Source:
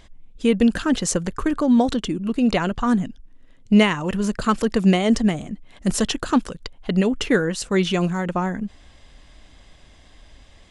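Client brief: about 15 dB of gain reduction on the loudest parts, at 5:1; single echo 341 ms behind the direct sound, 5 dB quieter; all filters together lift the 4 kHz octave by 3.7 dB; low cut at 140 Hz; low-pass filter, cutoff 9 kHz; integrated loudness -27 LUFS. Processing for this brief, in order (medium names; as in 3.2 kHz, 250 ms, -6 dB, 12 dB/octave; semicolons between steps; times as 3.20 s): high-pass 140 Hz; low-pass 9 kHz; peaking EQ 4 kHz +5.5 dB; compression 5:1, threshold -30 dBFS; delay 341 ms -5 dB; trim +5 dB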